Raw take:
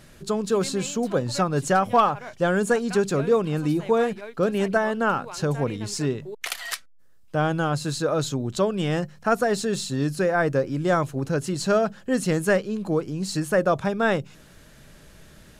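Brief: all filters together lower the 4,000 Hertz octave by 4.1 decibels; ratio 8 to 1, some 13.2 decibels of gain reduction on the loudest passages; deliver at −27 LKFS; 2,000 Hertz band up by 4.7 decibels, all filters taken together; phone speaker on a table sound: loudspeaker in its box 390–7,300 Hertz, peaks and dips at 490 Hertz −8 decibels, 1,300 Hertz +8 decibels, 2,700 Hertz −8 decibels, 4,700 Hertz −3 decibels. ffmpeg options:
ffmpeg -i in.wav -af "equalizer=frequency=2000:width_type=o:gain=4.5,equalizer=frequency=4000:width_type=o:gain=-3,acompressor=threshold=-28dB:ratio=8,highpass=frequency=390:width=0.5412,highpass=frequency=390:width=1.3066,equalizer=frequency=490:width_type=q:width=4:gain=-8,equalizer=frequency=1300:width_type=q:width=4:gain=8,equalizer=frequency=2700:width_type=q:width=4:gain=-8,equalizer=frequency=4700:width_type=q:width=4:gain=-3,lowpass=frequency=7300:width=0.5412,lowpass=frequency=7300:width=1.3066,volume=8dB" out.wav

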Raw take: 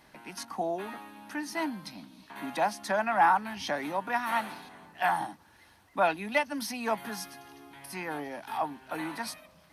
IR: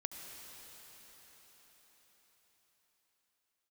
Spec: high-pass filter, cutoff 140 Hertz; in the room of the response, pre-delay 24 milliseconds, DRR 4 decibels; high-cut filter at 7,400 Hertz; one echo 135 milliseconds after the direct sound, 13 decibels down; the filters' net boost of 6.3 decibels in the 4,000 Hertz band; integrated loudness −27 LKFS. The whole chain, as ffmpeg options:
-filter_complex "[0:a]highpass=140,lowpass=7400,equalizer=frequency=4000:width_type=o:gain=8.5,aecho=1:1:135:0.224,asplit=2[link_01][link_02];[1:a]atrim=start_sample=2205,adelay=24[link_03];[link_02][link_03]afir=irnorm=-1:irlink=0,volume=-3dB[link_04];[link_01][link_04]amix=inputs=2:normalize=0,volume=2.5dB"

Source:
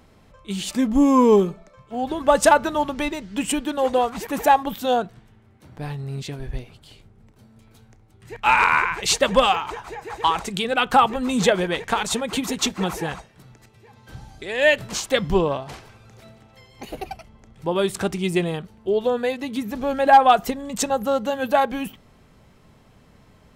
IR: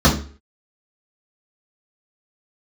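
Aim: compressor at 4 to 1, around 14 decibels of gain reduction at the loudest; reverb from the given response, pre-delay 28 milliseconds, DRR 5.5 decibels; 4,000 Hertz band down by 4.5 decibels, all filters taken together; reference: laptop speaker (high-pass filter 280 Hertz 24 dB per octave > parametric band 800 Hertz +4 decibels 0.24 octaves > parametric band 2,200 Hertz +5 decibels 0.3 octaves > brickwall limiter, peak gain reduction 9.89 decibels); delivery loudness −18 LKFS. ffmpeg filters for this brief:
-filter_complex "[0:a]equalizer=frequency=4000:width_type=o:gain=-6.5,acompressor=threshold=-27dB:ratio=4,asplit=2[link_01][link_02];[1:a]atrim=start_sample=2205,adelay=28[link_03];[link_02][link_03]afir=irnorm=-1:irlink=0,volume=-28dB[link_04];[link_01][link_04]amix=inputs=2:normalize=0,highpass=frequency=280:width=0.5412,highpass=frequency=280:width=1.3066,equalizer=frequency=800:width_type=o:width=0.24:gain=4,equalizer=frequency=2200:width_type=o:width=0.3:gain=5,volume=13dB,alimiter=limit=-7.5dB:level=0:latency=1"

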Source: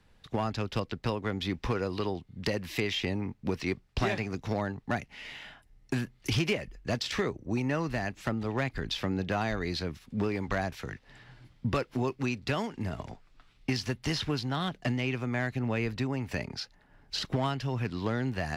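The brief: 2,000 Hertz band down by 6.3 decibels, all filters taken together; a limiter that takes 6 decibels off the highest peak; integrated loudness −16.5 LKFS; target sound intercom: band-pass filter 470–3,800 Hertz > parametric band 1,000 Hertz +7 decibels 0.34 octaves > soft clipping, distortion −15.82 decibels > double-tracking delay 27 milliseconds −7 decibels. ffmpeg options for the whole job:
ffmpeg -i in.wav -filter_complex "[0:a]equalizer=frequency=2000:width_type=o:gain=-8,alimiter=level_in=2dB:limit=-24dB:level=0:latency=1,volume=-2dB,highpass=470,lowpass=3800,equalizer=frequency=1000:width_type=o:width=0.34:gain=7,asoftclip=threshold=-32dB,asplit=2[link_01][link_02];[link_02]adelay=27,volume=-7dB[link_03];[link_01][link_03]amix=inputs=2:normalize=0,volume=26dB" out.wav

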